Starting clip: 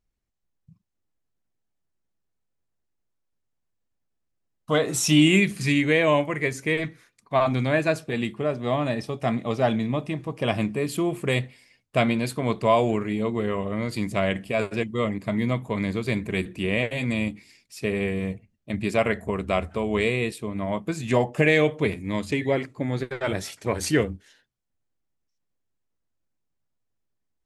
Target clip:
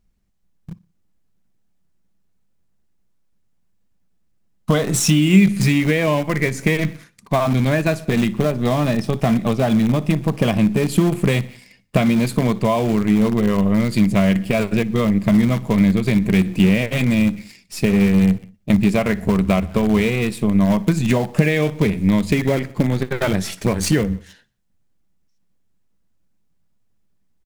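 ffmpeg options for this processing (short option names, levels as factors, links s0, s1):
-filter_complex "[0:a]asplit=2[s0][s1];[s1]acrusher=bits=5:dc=4:mix=0:aa=0.000001,volume=0.668[s2];[s0][s2]amix=inputs=2:normalize=0,lowshelf=f=120:g=6.5,aecho=1:1:60|120|180:0.0668|0.0334|0.0167,acompressor=threshold=0.0562:ratio=5,equalizer=f=190:t=o:w=0.52:g=10.5,volume=2.51"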